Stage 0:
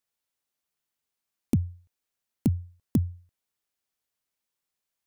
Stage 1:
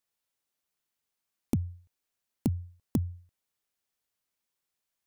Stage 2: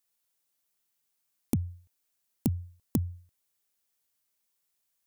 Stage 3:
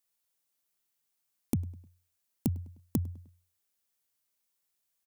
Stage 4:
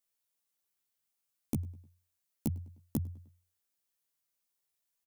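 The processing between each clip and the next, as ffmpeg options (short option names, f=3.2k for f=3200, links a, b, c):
-af "acompressor=threshold=-26dB:ratio=2.5"
-af "highshelf=f=5.9k:g=9"
-filter_complex "[0:a]asplit=2[a][b];[b]adelay=102,lowpass=f=4.2k:p=1,volume=-22.5dB,asplit=2[c][d];[d]adelay=102,lowpass=f=4.2k:p=1,volume=0.49,asplit=2[e][f];[f]adelay=102,lowpass=f=4.2k:p=1,volume=0.49[g];[a][c][e][g]amix=inputs=4:normalize=0,volume=-2dB"
-filter_complex "[0:a]asplit=2[a][b];[b]adelay=14,volume=-3.5dB[c];[a][c]amix=inputs=2:normalize=0,volume=-5dB"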